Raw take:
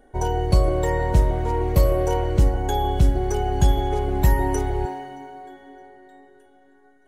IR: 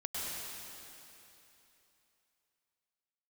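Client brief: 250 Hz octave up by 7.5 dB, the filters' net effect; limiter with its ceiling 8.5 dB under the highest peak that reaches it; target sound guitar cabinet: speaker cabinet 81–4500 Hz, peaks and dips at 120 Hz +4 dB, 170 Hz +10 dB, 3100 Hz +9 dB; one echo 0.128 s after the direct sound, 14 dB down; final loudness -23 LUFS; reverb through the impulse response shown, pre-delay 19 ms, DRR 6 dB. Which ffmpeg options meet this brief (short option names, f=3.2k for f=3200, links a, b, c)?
-filter_complex "[0:a]equalizer=f=250:t=o:g=7.5,alimiter=limit=-12.5dB:level=0:latency=1,aecho=1:1:128:0.2,asplit=2[a][b];[1:a]atrim=start_sample=2205,adelay=19[c];[b][c]afir=irnorm=-1:irlink=0,volume=-9.5dB[d];[a][d]amix=inputs=2:normalize=0,highpass=81,equalizer=f=120:t=q:w=4:g=4,equalizer=f=170:t=q:w=4:g=10,equalizer=f=3.1k:t=q:w=4:g=9,lowpass=f=4.5k:w=0.5412,lowpass=f=4.5k:w=1.3066,volume=-2.5dB"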